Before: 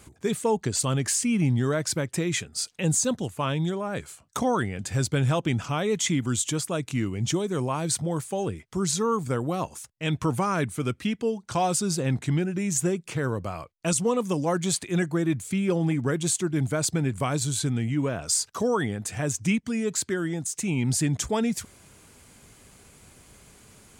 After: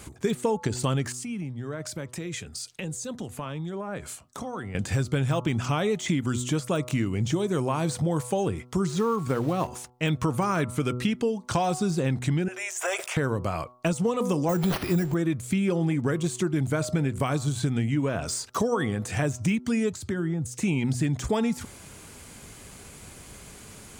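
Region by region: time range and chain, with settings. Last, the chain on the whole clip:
1.12–4.75 compressor 20:1, threshold -36 dBFS + three-band expander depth 40%
8.88–9.92 block floating point 5-bit + high shelf 5100 Hz -8.5 dB
12.48–13.17 elliptic high-pass 610 Hz, stop band 70 dB + bell 4200 Hz -8.5 dB 0.29 oct + sustainer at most 56 dB/s
14.49–15.14 zero-crossing step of -36 dBFS + low shelf 210 Hz +8.5 dB + careless resampling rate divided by 6×, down none, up hold
19.92–20.54 bell 94 Hz +15 dB 1.9 oct + compressor, threshold -31 dBFS + three-band expander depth 70%
whole clip: de-esser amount 85%; de-hum 123.6 Hz, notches 11; compressor, threshold -29 dBFS; gain +7 dB

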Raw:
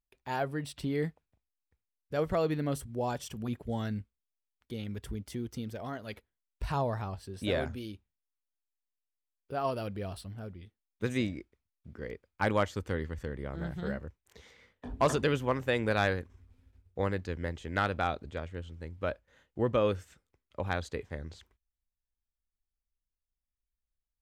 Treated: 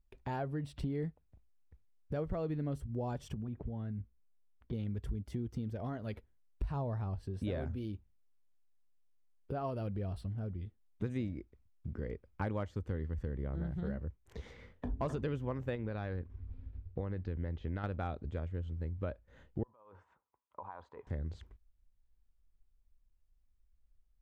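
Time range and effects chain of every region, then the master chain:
3.34–4.73 air absorption 270 m + compressor, threshold -41 dBFS
15.75–17.84 LPF 4900 Hz 24 dB/oct + compressor 3:1, threshold -32 dBFS
19.63–21.07 negative-ratio compressor -37 dBFS + band-pass 970 Hz, Q 7.7
whole clip: tilt -3 dB/oct; compressor 3:1, threshold -43 dBFS; gain +4 dB

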